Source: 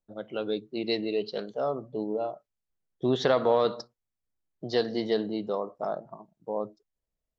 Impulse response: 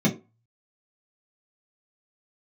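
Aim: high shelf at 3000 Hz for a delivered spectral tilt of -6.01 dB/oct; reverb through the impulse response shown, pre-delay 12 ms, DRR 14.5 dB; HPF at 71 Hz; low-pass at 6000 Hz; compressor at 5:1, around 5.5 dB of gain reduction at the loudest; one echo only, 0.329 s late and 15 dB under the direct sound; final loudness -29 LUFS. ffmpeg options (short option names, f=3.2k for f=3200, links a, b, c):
-filter_complex "[0:a]highpass=71,lowpass=6k,highshelf=f=3k:g=-8.5,acompressor=threshold=-25dB:ratio=5,aecho=1:1:329:0.178,asplit=2[a][b];[1:a]atrim=start_sample=2205,adelay=12[c];[b][c]afir=irnorm=-1:irlink=0,volume=-27.5dB[d];[a][d]amix=inputs=2:normalize=0,volume=2.5dB"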